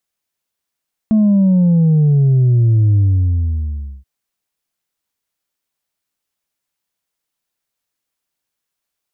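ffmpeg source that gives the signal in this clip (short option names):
-f lavfi -i "aevalsrc='0.355*clip((2.93-t)/1.07,0,1)*tanh(1.26*sin(2*PI*220*2.93/log(65/220)*(exp(log(65/220)*t/2.93)-1)))/tanh(1.26)':d=2.93:s=44100"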